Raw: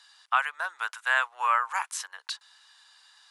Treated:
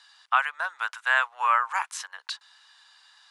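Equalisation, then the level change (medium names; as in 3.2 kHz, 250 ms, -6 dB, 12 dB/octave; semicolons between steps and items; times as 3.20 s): peaking EQ 380 Hz -7 dB 0.56 oct; treble shelf 8.8 kHz -11.5 dB; +2.5 dB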